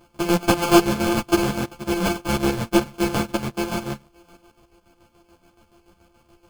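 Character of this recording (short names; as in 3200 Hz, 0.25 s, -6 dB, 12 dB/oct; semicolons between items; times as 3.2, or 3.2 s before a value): a buzz of ramps at a fixed pitch in blocks of 128 samples; chopped level 7 Hz, depth 60%, duty 50%; aliases and images of a low sample rate 1900 Hz, jitter 0%; a shimmering, thickened sound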